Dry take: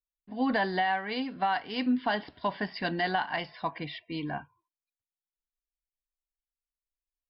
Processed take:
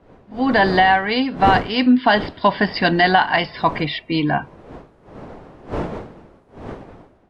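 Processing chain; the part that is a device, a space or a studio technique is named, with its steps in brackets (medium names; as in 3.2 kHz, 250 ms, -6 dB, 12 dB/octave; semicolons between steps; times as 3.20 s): smartphone video outdoors (wind noise 550 Hz -45 dBFS; level rider gain up to 16 dB; AAC 96 kbps 24 kHz)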